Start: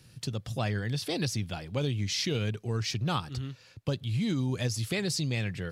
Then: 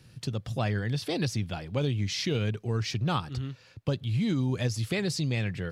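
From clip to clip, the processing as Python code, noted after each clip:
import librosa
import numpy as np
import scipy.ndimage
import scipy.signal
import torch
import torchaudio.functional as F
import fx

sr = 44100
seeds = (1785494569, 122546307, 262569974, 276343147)

y = fx.high_shelf(x, sr, hz=4400.0, db=-7.0)
y = y * 10.0 ** (2.0 / 20.0)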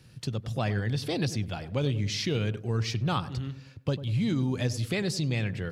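y = fx.echo_filtered(x, sr, ms=97, feedback_pct=51, hz=860.0, wet_db=-12.5)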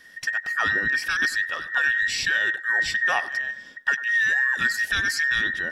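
y = fx.band_invert(x, sr, width_hz=2000)
y = y * 10.0 ** (5.0 / 20.0)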